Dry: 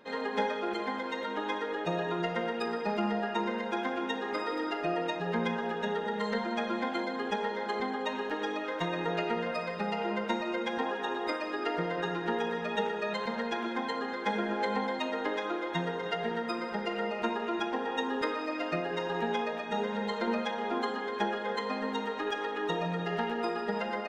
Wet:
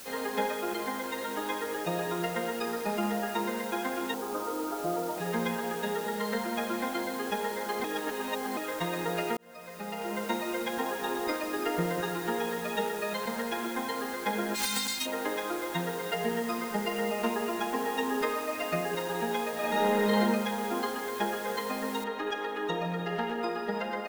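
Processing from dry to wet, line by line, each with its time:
4.14–5.18 steep low-pass 1500 Hz 72 dB/oct
7.84–8.57 reverse
9.37–10.31 fade in
11.02–12.01 low shelf 210 Hz +9.5 dB
14.54–15.05 spectral whitening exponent 0.1
16.13–18.95 comb 4.7 ms
19.54–20.19 reverb throw, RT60 1.5 s, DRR -4.5 dB
22.04 noise floor step -46 dB -64 dB

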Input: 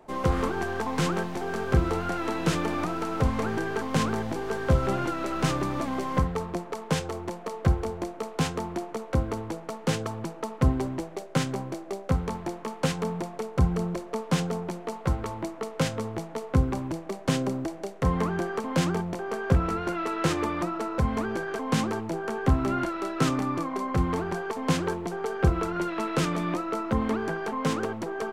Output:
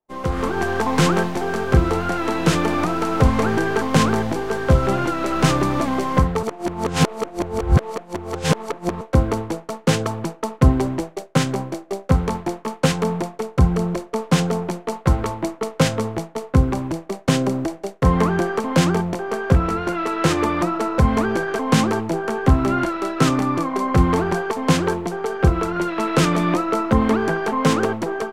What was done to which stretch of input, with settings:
6.43–9.01 reverse
whole clip: expander -31 dBFS; AGC gain up to 10.5 dB

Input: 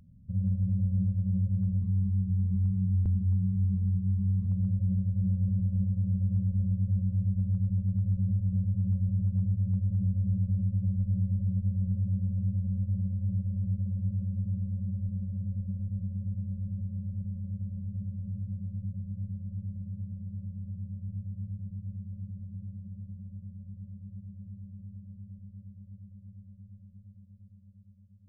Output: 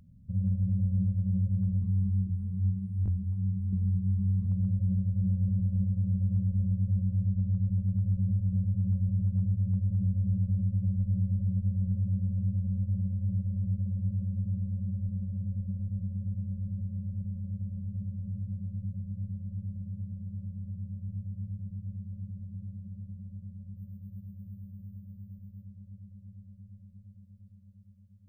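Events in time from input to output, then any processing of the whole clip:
2.27–3.73 detuned doubles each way 43 cents
7.25–7.67 air absorption 110 m
23.76–25.65 careless resampling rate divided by 3×, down filtered, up hold

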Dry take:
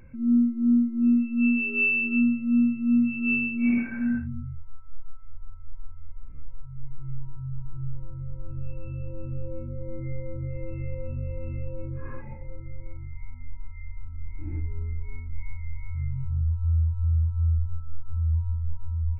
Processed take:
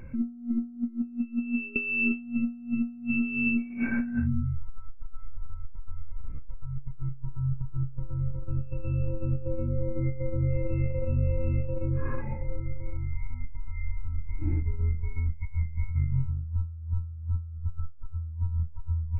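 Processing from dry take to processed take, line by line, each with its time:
0.75–1.76 upward expander 2.5:1, over -30 dBFS
14.9–15.94 bell 79 Hz +2 dB -> +11 dB 0.25 oct
whole clip: high shelf 2100 Hz -4 dB; negative-ratio compressor -29 dBFS, ratio -0.5; gain +2.5 dB

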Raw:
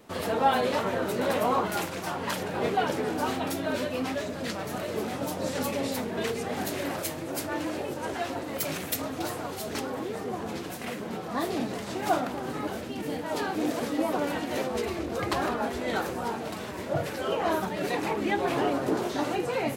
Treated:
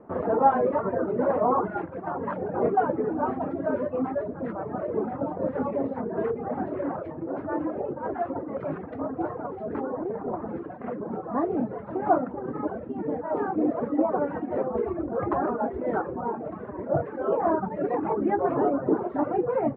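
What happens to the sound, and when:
9.99–10.5 Doppler distortion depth 0.53 ms
16.19–17.25 air absorption 77 m
whole clip: reverb removal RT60 1.3 s; LPF 1400 Hz 24 dB/oct; bell 400 Hz +6 dB 2.9 oct

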